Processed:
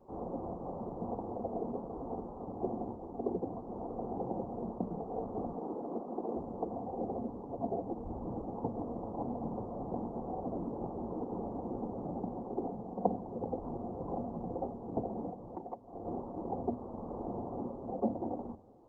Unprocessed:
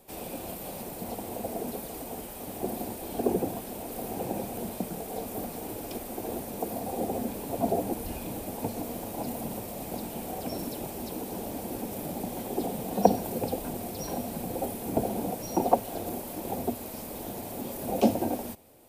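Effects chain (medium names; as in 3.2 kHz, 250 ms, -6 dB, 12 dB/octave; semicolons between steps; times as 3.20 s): saturation -4.5 dBFS, distortion -26 dB; steep low-pass 1.2 kHz 72 dB/octave; band-stop 620 Hz, Q 12; 12.54–13.07 s: doubling 47 ms -11 dB; gain riding within 5 dB 0.5 s; 5.55–6.36 s: steep high-pass 160 Hz 36 dB/octave; hum notches 50/100/150/200/250/300 Hz; reverberation RT60 2.0 s, pre-delay 55 ms, DRR 23 dB; 15.29–16.05 s: compression 8:1, threshold -35 dBFS, peak gain reduction 15 dB; trim -4.5 dB; Opus 20 kbps 48 kHz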